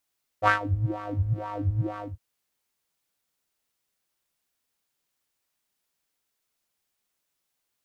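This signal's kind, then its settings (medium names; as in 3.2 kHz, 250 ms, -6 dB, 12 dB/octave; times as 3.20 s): synth patch with filter wobble G#2, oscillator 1 square, interval +19 st, filter bandpass, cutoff 180 Hz, Q 3.7, filter envelope 1.5 oct, attack 53 ms, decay 0.12 s, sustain -19 dB, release 0.20 s, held 1.56 s, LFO 2.1 Hz, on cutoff 2 oct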